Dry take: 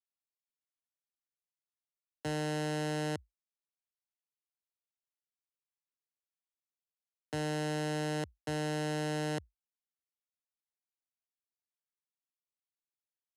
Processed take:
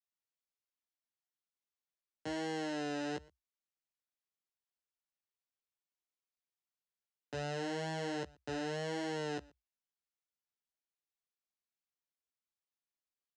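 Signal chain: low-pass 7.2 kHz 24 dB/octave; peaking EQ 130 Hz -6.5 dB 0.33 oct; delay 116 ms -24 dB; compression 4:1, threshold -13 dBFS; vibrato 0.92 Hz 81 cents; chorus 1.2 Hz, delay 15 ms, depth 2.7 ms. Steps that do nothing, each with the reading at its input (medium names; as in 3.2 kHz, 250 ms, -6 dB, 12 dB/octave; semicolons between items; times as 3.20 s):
compression, threshold -13 dBFS: peak at its input -23.5 dBFS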